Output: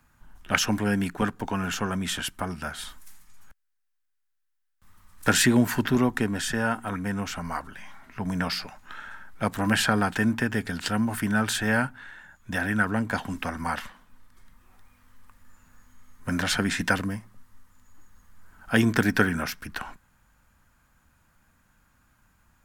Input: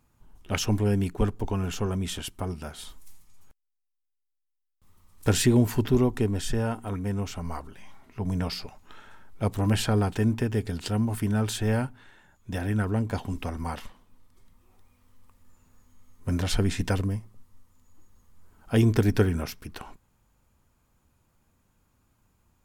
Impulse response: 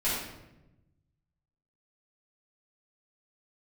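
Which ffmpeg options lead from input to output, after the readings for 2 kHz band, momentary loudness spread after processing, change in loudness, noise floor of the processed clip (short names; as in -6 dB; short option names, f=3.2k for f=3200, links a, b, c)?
+11.5 dB, 16 LU, +1.0 dB, -74 dBFS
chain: -filter_complex "[0:a]equalizer=f=100:t=o:w=0.67:g=-4,equalizer=f=400:t=o:w=0.67:g=-8,equalizer=f=1.6k:t=o:w=0.67:g=10,acrossover=split=130|1800|2100[a][b][c][d];[a]acompressor=threshold=-46dB:ratio=6[e];[e][b][c][d]amix=inputs=4:normalize=0,volume=4dB"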